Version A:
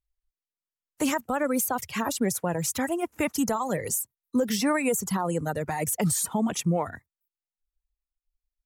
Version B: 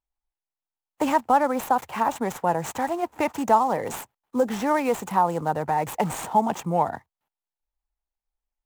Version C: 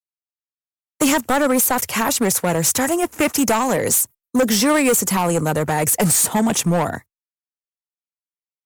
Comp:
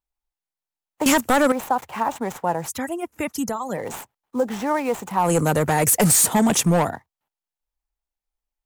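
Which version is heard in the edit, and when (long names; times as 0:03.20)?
B
0:01.06–0:01.52: punch in from C
0:02.67–0:03.76: punch in from A, crossfade 0.06 s
0:05.24–0:06.89: punch in from C, crossfade 0.16 s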